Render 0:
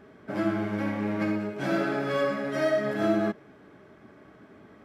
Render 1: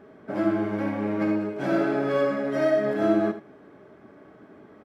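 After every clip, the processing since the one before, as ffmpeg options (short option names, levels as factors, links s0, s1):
-filter_complex "[0:a]equalizer=f=490:w=0.37:g=8,asplit=2[s0][s1];[s1]aecho=0:1:57|79:0.178|0.237[s2];[s0][s2]amix=inputs=2:normalize=0,volume=0.596"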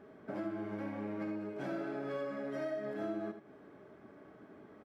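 -af "acompressor=threshold=0.0224:ratio=3,volume=0.501"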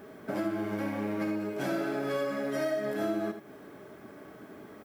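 -af "aemphasis=mode=production:type=75fm,volume=2.51"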